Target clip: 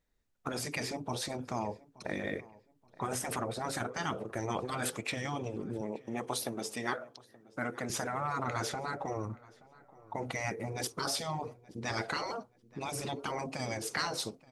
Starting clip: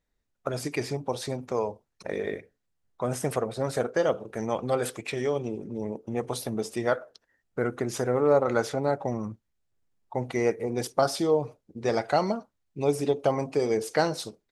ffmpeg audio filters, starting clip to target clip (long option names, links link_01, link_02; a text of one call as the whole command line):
ffmpeg -i in.wav -filter_complex "[0:a]asettb=1/sr,asplit=3[link_01][link_02][link_03];[link_01]atrim=end=5.814[link_04];[link_02]atrim=start=5.81:end=7.9,asetpts=PTS-STARTPTS,afade=type=in:duration=0.004:curve=qsin,afade=type=out:start_time=2.086:duration=0.004:curve=qsin,highpass=frequency=360:poles=1[link_05];[link_03]atrim=start=7.896[link_06];[link_04][link_05]acrossfade=duration=0.004:curve1=hsin:curve2=qsin[link_07];[link_07][link_06]acrossfade=duration=0.004:curve1=qsin:curve2=hsin,afftfilt=real='re*lt(hypot(re,im),0.158)':imag='im*lt(hypot(re,im),0.158)':win_size=1024:overlap=0.75,asplit=2[link_08][link_09];[link_09]adelay=876,lowpass=frequency=2700:poles=1,volume=-21.5dB,asplit=2[link_10][link_11];[link_11]adelay=876,lowpass=frequency=2700:poles=1,volume=0.36,asplit=2[link_12][link_13];[link_13]adelay=876,lowpass=frequency=2700:poles=1,volume=0.36[link_14];[link_08][link_10][link_12][link_14]amix=inputs=4:normalize=0" out.wav